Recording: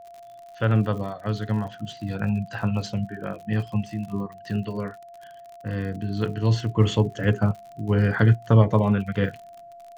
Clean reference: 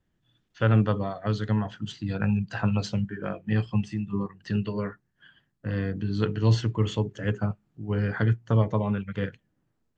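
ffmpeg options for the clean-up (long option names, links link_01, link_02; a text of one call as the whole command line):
ffmpeg -i in.wav -af "adeclick=threshold=4,bandreject=frequency=690:width=30,asetnsamples=nb_out_samples=441:pad=0,asendcmd='6.76 volume volume -6dB',volume=0dB" out.wav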